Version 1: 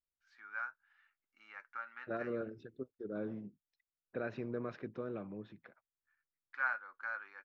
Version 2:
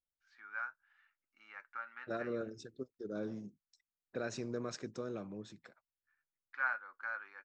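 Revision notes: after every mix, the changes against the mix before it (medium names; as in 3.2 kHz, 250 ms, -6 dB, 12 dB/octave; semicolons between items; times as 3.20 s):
second voice: remove low-pass 2.9 kHz 24 dB/octave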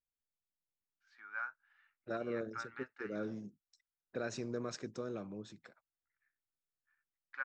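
first voice: entry +0.80 s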